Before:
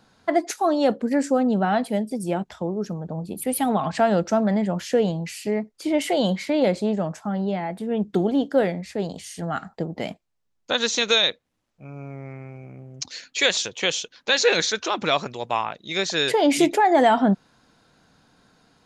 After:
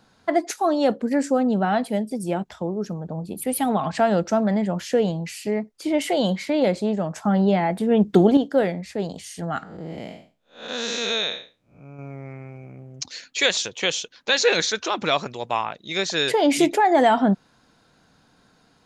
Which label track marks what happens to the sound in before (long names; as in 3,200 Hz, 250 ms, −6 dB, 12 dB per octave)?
7.160000	8.370000	clip gain +6.5 dB
9.630000	11.990000	spectrum smeared in time width 218 ms